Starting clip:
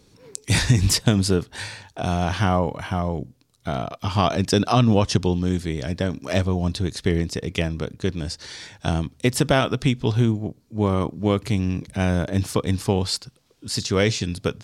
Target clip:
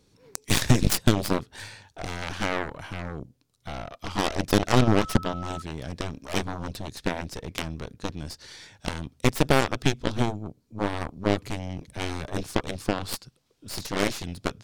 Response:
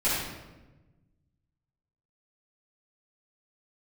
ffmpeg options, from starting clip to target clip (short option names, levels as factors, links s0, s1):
-filter_complex "[0:a]aeval=exprs='0.562*(cos(1*acos(clip(val(0)/0.562,-1,1)))-cos(1*PI/2))+0.0562*(cos(3*acos(clip(val(0)/0.562,-1,1)))-cos(3*PI/2))+0.0891*(cos(4*acos(clip(val(0)/0.562,-1,1)))-cos(4*PI/2))+0.1*(cos(7*acos(clip(val(0)/0.562,-1,1)))-cos(7*PI/2))+0.0224*(cos(8*acos(clip(val(0)/0.562,-1,1)))-cos(8*PI/2))':c=same,asettb=1/sr,asplit=3[s0][s1][s2];[s0]atrim=end=4.814[s3];[s1]atrim=start=4.81:end=5.62,asetpts=PTS-STARTPTS,afade=t=in:d=0.004:c=qsin,afade=t=out:st=0.806:d=0.004:c=qsin,aeval=exprs='val(0)+0.0178*sin(2*PI*1300*n/s)':c=same[s4];[s2]atrim=start=5.616[s5];[s3][s4]acrossfade=d=0.004:c1=hsin:c2=qsin[s6];[s6][s5]acrossfade=d=0.004:c1=qsin:c2=hsin,volume=0.794"